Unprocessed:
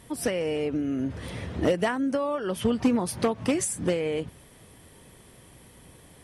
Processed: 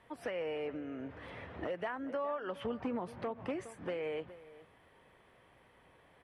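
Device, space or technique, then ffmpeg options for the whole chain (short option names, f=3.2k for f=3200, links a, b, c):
DJ mixer with the lows and highs turned down: -filter_complex "[0:a]asettb=1/sr,asplit=3[a][b][c];[a]atrim=end=2.664[d];[b]atrim=start=2.66:end=3.69,asetpts=PTS-STARTPTS,afade=t=in:d=0.004:c=qsin,afade=t=out:st=1.026:d=0.004:c=qsin,tiltshelf=f=630:g=4[e];[c]atrim=start=3.686[f];[d][e]acrossfade=d=0.004:c1=hsin:c2=qsin[g];[g][f]acrossfade=d=0.004:c1=qsin:c2=hsin,acrossover=split=490 2800:gain=0.224 1 0.0631[h][i][j];[h][i][j]amix=inputs=3:normalize=0,asplit=2[k][l];[l]adelay=414,volume=-18dB,highshelf=f=4k:g=-9.32[m];[k][m]amix=inputs=2:normalize=0,alimiter=limit=-23.5dB:level=0:latency=1:release=129,volume=-4.5dB"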